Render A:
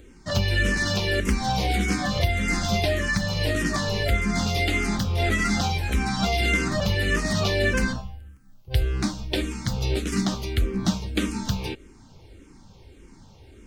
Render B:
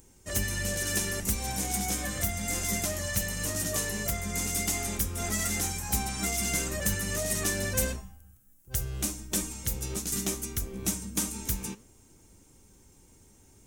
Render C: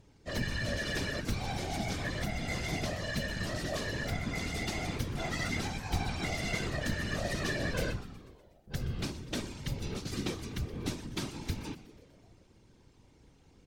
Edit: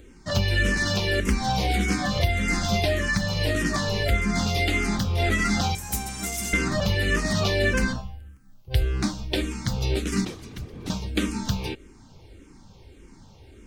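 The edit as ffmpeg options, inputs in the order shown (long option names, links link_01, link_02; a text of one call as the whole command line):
ffmpeg -i take0.wav -i take1.wav -i take2.wav -filter_complex "[0:a]asplit=3[link_01][link_02][link_03];[link_01]atrim=end=5.752[link_04];[1:a]atrim=start=5.748:end=6.532[link_05];[link_02]atrim=start=6.528:end=10.252[link_06];[2:a]atrim=start=10.248:end=10.902[link_07];[link_03]atrim=start=10.898[link_08];[link_04][link_05]acrossfade=duration=0.004:curve1=hsin:curve2=hsin[link_09];[link_09][link_06]acrossfade=duration=0.004:curve1=hsin:curve2=hsin[link_10];[link_10][link_07]acrossfade=duration=0.004:curve1=hsin:curve2=hsin[link_11];[link_11][link_08]acrossfade=duration=0.004:curve1=hsin:curve2=hsin" out.wav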